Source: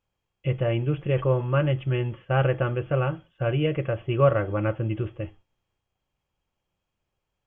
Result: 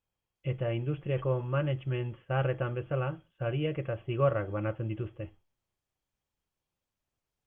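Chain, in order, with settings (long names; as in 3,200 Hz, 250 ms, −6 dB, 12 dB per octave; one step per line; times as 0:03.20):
level −7 dB
Opus 48 kbit/s 48,000 Hz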